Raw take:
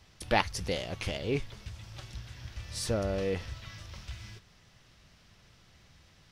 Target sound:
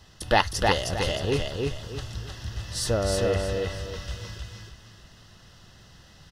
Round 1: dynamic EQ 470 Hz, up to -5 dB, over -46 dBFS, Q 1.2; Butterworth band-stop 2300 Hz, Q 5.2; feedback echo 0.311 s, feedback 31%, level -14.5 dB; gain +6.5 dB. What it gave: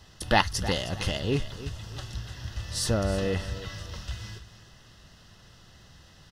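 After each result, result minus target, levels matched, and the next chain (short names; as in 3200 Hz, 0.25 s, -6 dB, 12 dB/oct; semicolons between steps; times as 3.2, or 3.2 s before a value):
echo-to-direct -11.5 dB; 250 Hz band +3.0 dB
dynamic EQ 470 Hz, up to -5 dB, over -46 dBFS, Q 1.2; Butterworth band-stop 2300 Hz, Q 5.2; feedback echo 0.311 s, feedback 31%, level -3 dB; gain +6.5 dB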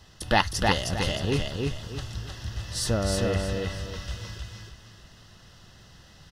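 250 Hz band +3.0 dB
dynamic EQ 210 Hz, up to -5 dB, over -46 dBFS, Q 1.2; Butterworth band-stop 2300 Hz, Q 5.2; feedback echo 0.311 s, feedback 31%, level -3 dB; gain +6.5 dB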